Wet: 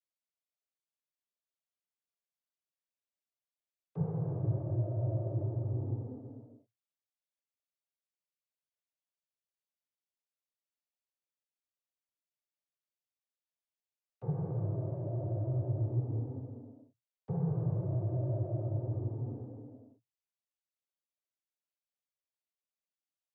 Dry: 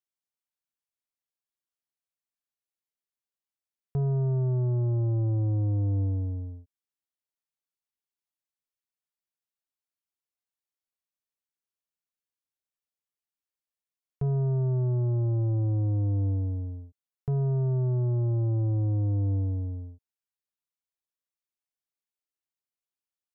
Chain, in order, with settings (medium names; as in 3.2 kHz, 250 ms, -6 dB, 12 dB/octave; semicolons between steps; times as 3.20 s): peaking EQ 580 Hz +11 dB 0.3 oct; noise-vocoded speech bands 16; trim -8 dB